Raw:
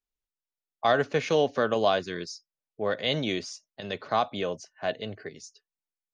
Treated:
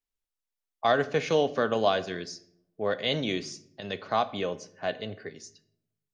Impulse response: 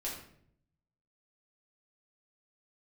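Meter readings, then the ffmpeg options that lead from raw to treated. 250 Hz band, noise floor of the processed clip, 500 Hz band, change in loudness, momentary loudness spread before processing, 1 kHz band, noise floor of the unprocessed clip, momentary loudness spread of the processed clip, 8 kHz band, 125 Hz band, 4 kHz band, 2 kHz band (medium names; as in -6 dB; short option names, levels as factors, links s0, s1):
-0.5 dB, under -85 dBFS, -0.5 dB, -0.5 dB, 16 LU, -0.5 dB, under -85 dBFS, 16 LU, no reading, -1.0 dB, -0.5 dB, -1.0 dB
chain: -filter_complex "[0:a]asplit=2[s0][s1];[1:a]atrim=start_sample=2205[s2];[s1][s2]afir=irnorm=-1:irlink=0,volume=0.251[s3];[s0][s3]amix=inputs=2:normalize=0,volume=0.794"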